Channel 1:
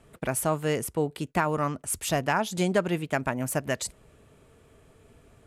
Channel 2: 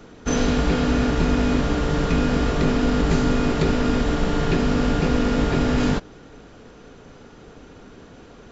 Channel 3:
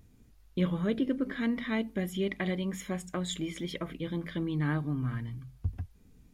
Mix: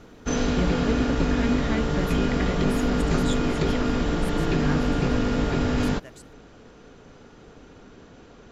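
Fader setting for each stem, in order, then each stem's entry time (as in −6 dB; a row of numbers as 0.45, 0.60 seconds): −17.5, −3.5, +1.0 decibels; 2.35, 0.00, 0.00 seconds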